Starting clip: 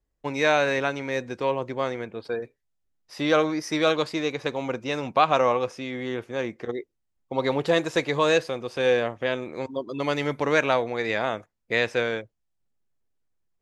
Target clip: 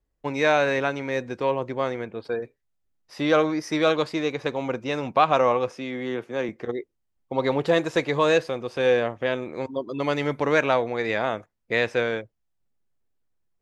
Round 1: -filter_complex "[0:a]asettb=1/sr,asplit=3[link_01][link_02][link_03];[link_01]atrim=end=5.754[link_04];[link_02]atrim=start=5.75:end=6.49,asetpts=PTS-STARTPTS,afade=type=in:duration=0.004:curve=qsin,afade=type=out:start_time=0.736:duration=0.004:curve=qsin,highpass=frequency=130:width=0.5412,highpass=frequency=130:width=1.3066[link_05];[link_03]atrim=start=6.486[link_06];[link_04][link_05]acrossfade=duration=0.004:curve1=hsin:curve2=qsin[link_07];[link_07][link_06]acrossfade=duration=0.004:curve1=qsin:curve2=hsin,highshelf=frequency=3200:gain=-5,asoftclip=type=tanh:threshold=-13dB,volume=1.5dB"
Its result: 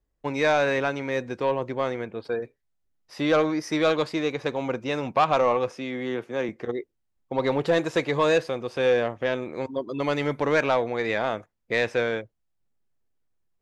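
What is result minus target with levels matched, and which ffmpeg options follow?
soft clipping: distortion +17 dB
-filter_complex "[0:a]asettb=1/sr,asplit=3[link_01][link_02][link_03];[link_01]atrim=end=5.754[link_04];[link_02]atrim=start=5.75:end=6.49,asetpts=PTS-STARTPTS,afade=type=in:duration=0.004:curve=qsin,afade=type=out:start_time=0.736:duration=0.004:curve=qsin,highpass=frequency=130:width=0.5412,highpass=frequency=130:width=1.3066[link_05];[link_03]atrim=start=6.486[link_06];[link_04][link_05]acrossfade=duration=0.004:curve1=hsin:curve2=qsin[link_07];[link_07][link_06]acrossfade=duration=0.004:curve1=qsin:curve2=hsin,highshelf=frequency=3200:gain=-5,asoftclip=type=tanh:threshold=-2.5dB,volume=1.5dB"

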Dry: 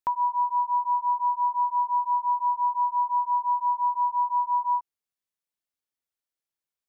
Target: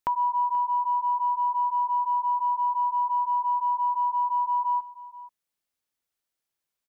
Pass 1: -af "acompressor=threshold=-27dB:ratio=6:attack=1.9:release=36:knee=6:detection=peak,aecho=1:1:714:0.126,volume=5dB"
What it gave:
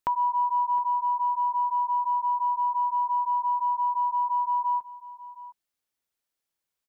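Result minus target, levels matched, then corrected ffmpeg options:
echo 232 ms late
-af "acompressor=threshold=-27dB:ratio=6:attack=1.9:release=36:knee=6:detection=peak,aecho=1:1:482:0.126,volume=5dB"

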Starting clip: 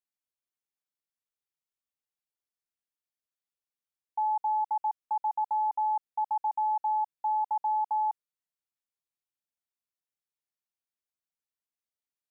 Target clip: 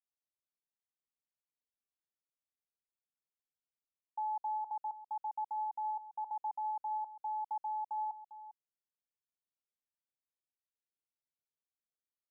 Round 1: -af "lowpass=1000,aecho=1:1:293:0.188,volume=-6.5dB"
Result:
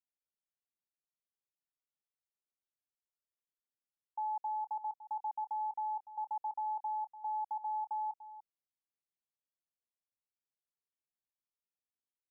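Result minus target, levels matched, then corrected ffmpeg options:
echo 107 ms early
-af "lowpass=1000,aecho=1:1:400:0.188,volume=-6.5dB"

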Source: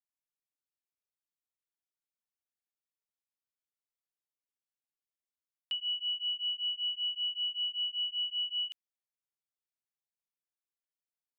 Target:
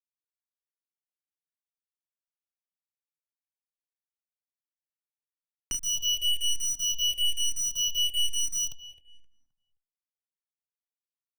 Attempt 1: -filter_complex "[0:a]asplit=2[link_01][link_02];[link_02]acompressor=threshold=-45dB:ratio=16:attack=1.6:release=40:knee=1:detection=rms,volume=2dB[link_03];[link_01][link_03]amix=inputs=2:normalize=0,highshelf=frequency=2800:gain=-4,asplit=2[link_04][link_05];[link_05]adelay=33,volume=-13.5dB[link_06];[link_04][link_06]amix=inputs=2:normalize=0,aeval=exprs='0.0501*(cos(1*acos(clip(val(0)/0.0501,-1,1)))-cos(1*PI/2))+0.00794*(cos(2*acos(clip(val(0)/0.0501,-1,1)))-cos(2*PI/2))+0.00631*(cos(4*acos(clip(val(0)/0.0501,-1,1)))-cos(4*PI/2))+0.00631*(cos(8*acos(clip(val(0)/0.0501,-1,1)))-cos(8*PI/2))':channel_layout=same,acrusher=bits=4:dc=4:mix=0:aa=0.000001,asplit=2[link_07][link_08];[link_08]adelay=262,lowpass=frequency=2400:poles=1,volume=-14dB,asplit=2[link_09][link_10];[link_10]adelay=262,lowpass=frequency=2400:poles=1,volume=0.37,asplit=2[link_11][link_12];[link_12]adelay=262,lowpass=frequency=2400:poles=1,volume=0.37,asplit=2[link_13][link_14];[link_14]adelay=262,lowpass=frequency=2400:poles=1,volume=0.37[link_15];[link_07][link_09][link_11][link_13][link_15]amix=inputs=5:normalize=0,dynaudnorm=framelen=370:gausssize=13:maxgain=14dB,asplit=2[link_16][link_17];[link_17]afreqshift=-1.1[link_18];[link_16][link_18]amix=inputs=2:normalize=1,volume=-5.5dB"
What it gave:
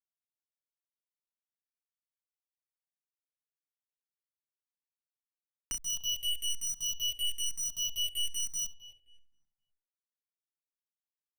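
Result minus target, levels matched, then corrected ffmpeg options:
downward compressor: peak gain reduction +11 dB
-filter_complex "[0:a]asplit=2[link_01][link_02];[link_02]acompressor=threshold=-33.5dB:ratio=16:attack=1.6:release=40:knee=1:detection=rms,volume=2dB[link_03];[link_01][link_03]amix=inputs=2:normalize=0,highshelf=frequency=2800:gain=-4,asplit=2[link_04][link_05];[link_05]adelay=33,volume=-13.5dB[link_06];[link_04][link_06]amix=inputs=2:normalize=0,aeval=exprs='0.0501*(cos(1*acos(clip(val(0)/0.0501,-1,1)))-cos(1*PI/2))+0.00794*(cos(2*acos(clip(val(0)/0.0501,-1,1)))-cos(2*PI/2))+0.00631*(cos(4*acos(clip(val(0)/0.0501,-1,1)))-cos(4*PI/2))+0.00631*(cos(8*acos(clip(val(0)/0.0501,-1,1)))-cos(8*PI/2))':channel_layout=same,acrusher=bits=4:dc=4:mix=0:aa=0.000001,asplit=2[link_07][link_08];[link_08]adelay=262,lowpass=frequency=2400:poles=1,volume=-14dB,asplit=2[link_09][link_10];[link_10]adelay=262,lowpass=frequency=2400:poles=1,volume=0.37,asplit=2[link_11][link_12];[link_12]adelay=262,lowpass=frequency=2400:poles=1,volume=0.37,asplit=2[link_13][link_14];[link_14]adelay=262,lowpass=frequency=2400:poles=1,volume=0.37[link_15];[link_07][link_09][link_11][link_13][link_15]amix=inputs=5:normalize=0,dynaudnorm=framelen=370:gausssize=13:maxgain=14dB,asplit=2[link_16][link_17];[link_17]afreqshift=-1.1[link_18];[link_16][link_18]amix=inputs=2:normalize=1,volume=-5.5dB"

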